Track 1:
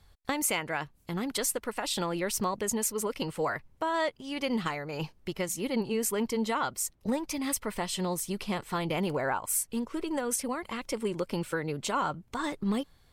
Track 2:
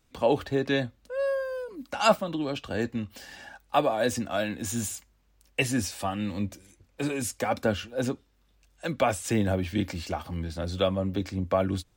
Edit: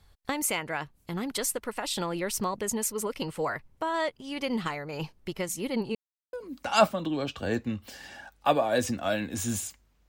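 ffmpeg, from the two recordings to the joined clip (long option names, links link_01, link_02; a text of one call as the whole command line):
ffmpeg -i cue0.wav -i cue1.wav -filter_complex "[0:a]apad=whole_dur=10.08,atrim=end=10.08,asplit=2[link_01][link_02];[link_01]atrim=end=5.95,asetpts=PTS-STARTPTS,afade=type=out:start_time=5.946:duration=0.004:curve=hsin[link_03];[link_02]atrim=start=5.95:end=6.33,asetpts=PTS-STARTPTS,volume=0[link_04];[1:a]atrim=start=1.61:end=5.36,asetpts=PTS-STARTPTS,afade=type=in:duration=0.004:curve=hsin[link_05];[link_03][link_04][link_05]concat=n=3:v=0:a=1" out.wav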